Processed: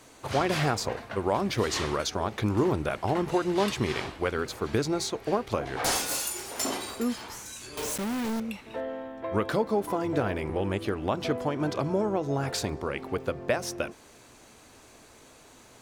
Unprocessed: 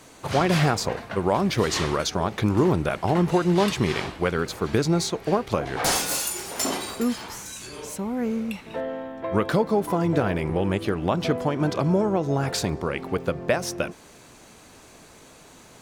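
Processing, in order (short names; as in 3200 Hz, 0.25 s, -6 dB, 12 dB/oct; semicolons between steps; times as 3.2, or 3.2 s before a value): bell 170 Hz -12.5 dB 0.2 oct; 7.77–8.4 companded quantiser 2-bit; gain -4 dB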